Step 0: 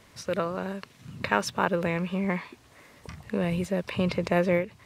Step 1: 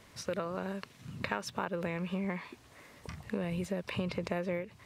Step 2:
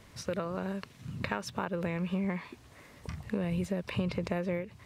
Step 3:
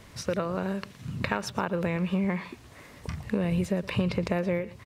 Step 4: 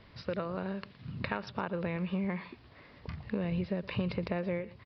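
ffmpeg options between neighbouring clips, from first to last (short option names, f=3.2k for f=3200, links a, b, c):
-af "acompressor=threshold=-29dB:ratio=5,volume=-2dB"
-af "lowshelf=f=190:g=7"
-af "aecho=1:1:116:0.112,volume=5dB"
-af "aresample=11025,aresample=44100,volume=-6dB"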